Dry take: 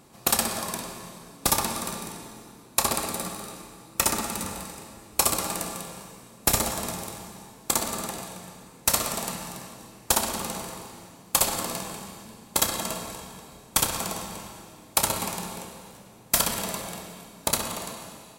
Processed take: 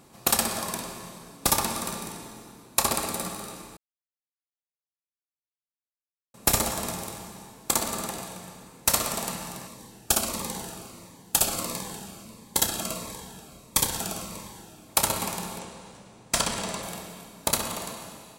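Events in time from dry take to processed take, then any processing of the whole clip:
3.77–6.34 s: mute
9.67–14.89 s: Shepard-style phaser falling 1.5 Hz
15.59–16.83 s: Savitzky-Golay filter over 9 samples

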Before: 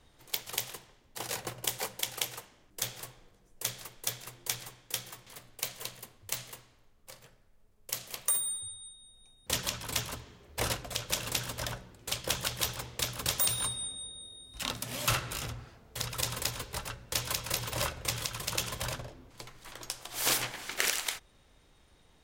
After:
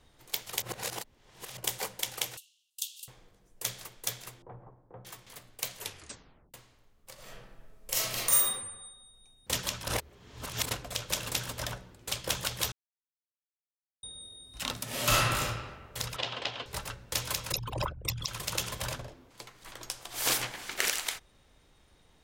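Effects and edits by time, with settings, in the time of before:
0.62–1.57 s: reverse
2.37–3.08 s: rippled Chebyshev high-pass 2.7 kHz, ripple 3 dB
4.42–5.05 s: inverse Chebyshev low-pass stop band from 5.6 kHz, stop band 80 dB
5.77 s: tape stop 0.77 s
7.14–8.44 s: reverb throw, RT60 1.1 s, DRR -9.5 dB
9.87–10.71 s: reverse
12.72–14.03 s: mute
14.84–15.41 s: reverb throw, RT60 1.4 s, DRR -5 dB
16.16–16.66 s: cabinet simulation 170–4400 Hz, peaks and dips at 180 Hz -7 dB, 700 Hz +8 dB, 3 kHz +8 dB
17.52–18.28 s: resonances exaggerated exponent 3
19.14–19.62 s: bass shelf 140 Hz -9.5 dB

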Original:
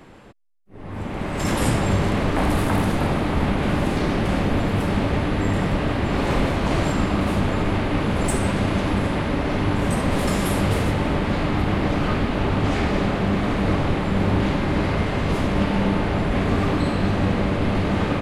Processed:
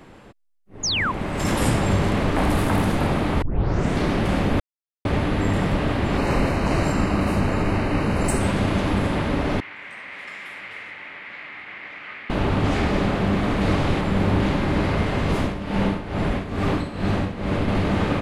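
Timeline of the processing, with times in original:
0.83–1.12 s: painted sound fall 920–7100 Hz -23 dBFS
3.42 s: tape start 0.58 s
4.60–5.05 s: mute
6.18–8.41 s: Butterworth band-stop 3.4 kHz, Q 5
9.60–12.30 s: band-pass filter 2.1 kHz, Q 3.9
13.61–14.01 s: peaking EQ 5.9 kHz +4 dB 2.4 oct
15.39–17.68 s: tremolo 2.3 Hz, depth 73%

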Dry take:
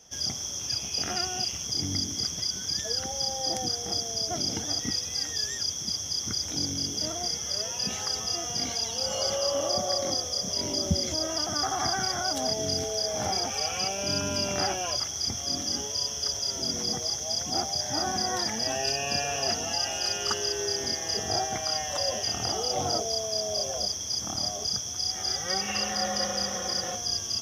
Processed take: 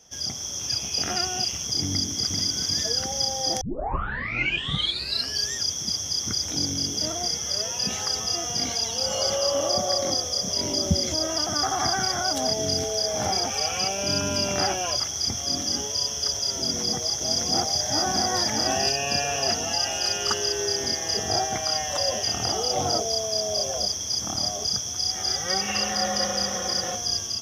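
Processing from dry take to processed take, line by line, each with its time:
1.91–2.49 s: echo throw 390 ms, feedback 50%, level -3.5 dB
3.61 s: tape start 1.86 s
16.59–18.88 s: delay 619 ms -3.5 dB
whole clip: level rider gain up to 3.5 dB

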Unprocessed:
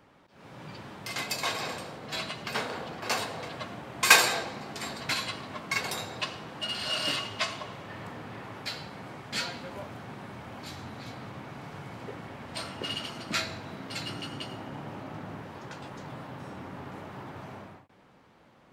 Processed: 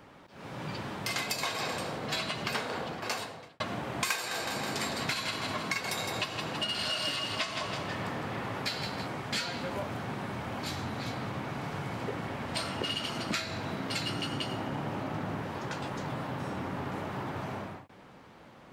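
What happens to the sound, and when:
2.50–3.60 s: fade out
4.15–9.07 s: feedback delay 161 ms, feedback 49%, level -9.5 dB
whole clip: compression 12:1, threshold -35 dBFS; trim +6 dB

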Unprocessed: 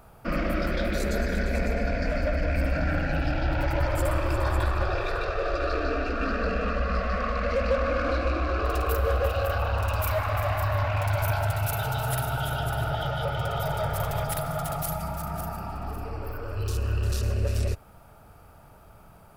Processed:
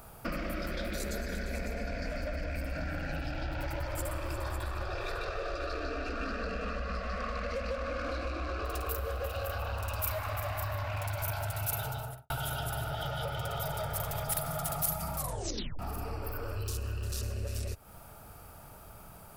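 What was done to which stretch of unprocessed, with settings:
11.67–12.30 s: studio fade out
15.15 s: tape stop 0.64 s
whole clip: compression, threshold -33 dBFS; treble shelf 4.4 kHz +10.5 dB

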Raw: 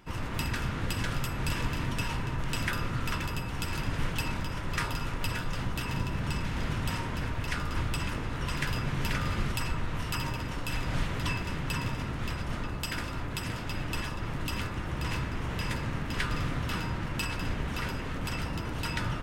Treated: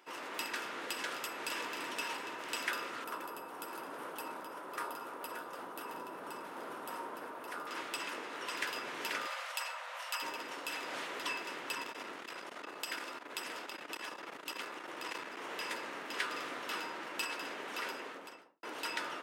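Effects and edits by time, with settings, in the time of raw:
1.41–1.83 s: echo throw 340 ms, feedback 70%, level -10.5 dB
3.04–7.67 s: high-order bell 3.7 kHz -11.5 dB 2.4 oct
9.26–10.22 s: brick-wall FIR high-pass 490 Hz
11.74–15.37 s: transformer saturation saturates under 150 Hz
17.92–18.63 s: studio fade out
whole clip: high-pass 350 Hz 24 dB/octave; trim -3 dB

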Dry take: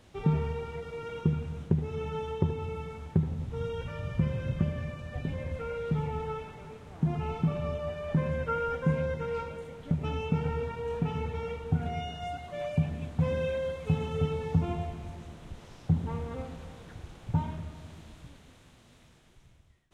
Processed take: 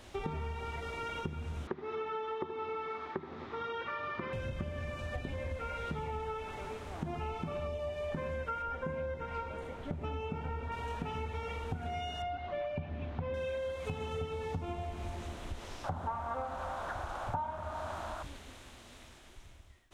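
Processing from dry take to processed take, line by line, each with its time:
1.67–4.33 s: cabinet simulation 300–4400 Hz, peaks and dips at 370 Hz +5 dB, 560 Hz -5 dB, 1.2 kHz +9 dB, 1.9 kHz +4 dB, 2.9 kHz -5 dB
7.67–8.12 s: peaking EQ 1.4 kHz -12.5 dB 0.44 oct
8.62–10.72 s: treble shelf 2.8 kHz -10.5 dB
12.22–13.34 s: distance through air 270 m
15.84–18.23 s: high-order bell 940 Hz +14.5 dB
whole clip: peaking EQ 150 Hz -13.5 dB 0.95 oct; band-stop 470 Hz, Q 12; compression 6:1, threshold -42 dBFS; trim +7 dB

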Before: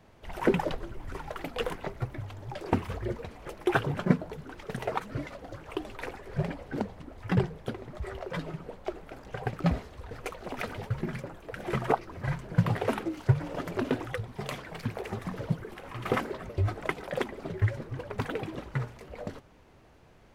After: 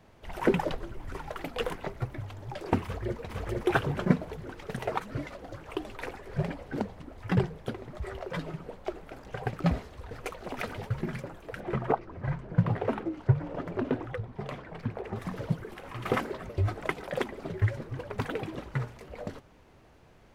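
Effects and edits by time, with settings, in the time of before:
2.83–3.33 s: echo throw 460 ms, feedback 50%, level -0.5 dB
11.60–15.16 s: low-pass 1.3 kHz 6 dB/octave

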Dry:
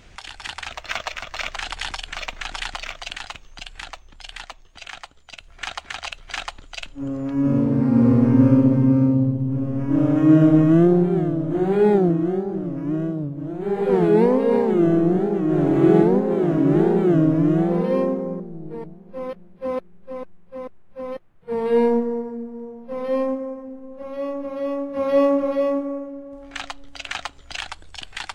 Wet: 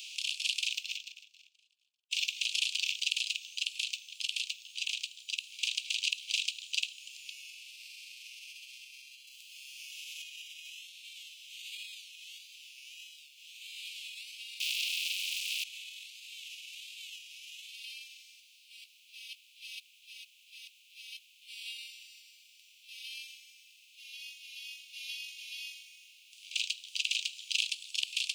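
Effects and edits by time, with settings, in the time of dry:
0.75–2.11 s: fade out exponential
9.27–10.22 s: treble shelf 3.9 kHz +9.5 dB
14.60–15.64 s: waveshaping leveller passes 5
whole clip: spectral levelling over time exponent 0.6; peak limiter -8.5 dBFS; steep high-pass 2.5 kHz 96 dB/octave

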